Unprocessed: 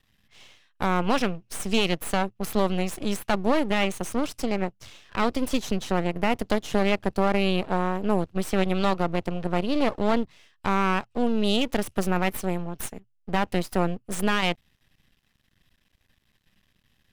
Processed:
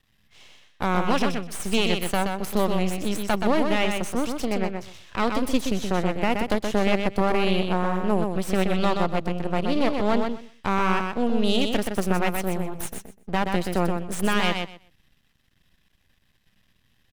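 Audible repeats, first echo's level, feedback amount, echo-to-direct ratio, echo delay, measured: 2, -5.0 dB, 17%, -5.0 dB, 0.125 s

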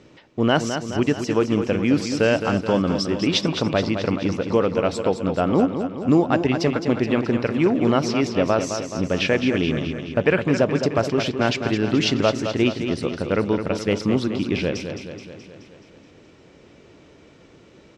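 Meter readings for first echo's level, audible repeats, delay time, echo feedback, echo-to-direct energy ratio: -8.0 dB, 6, 0.213 s, 59%, -6.0 dB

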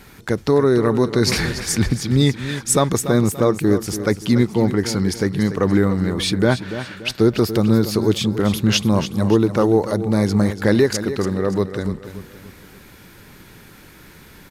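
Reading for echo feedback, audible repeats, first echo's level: 40%, 3, -11.5 dB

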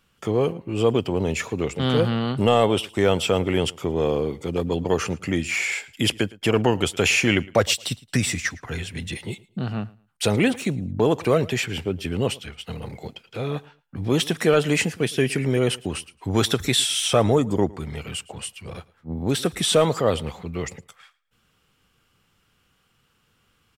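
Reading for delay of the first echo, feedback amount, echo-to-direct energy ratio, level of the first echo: 0.111 s, 24%, -22.5 dB, -22.5 dB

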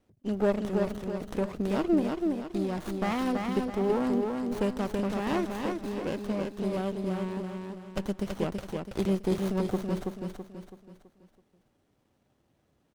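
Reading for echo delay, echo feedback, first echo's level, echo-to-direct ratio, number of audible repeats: 0.329 s, 42%, -4.0 dB, -3.0 dB, 5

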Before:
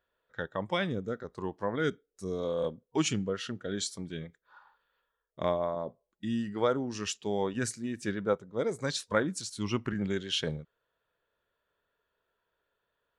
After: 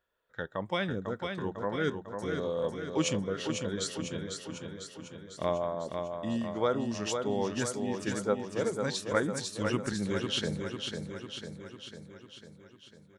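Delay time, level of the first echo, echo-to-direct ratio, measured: 0.499 s, -5.5 dB, -3.5 dB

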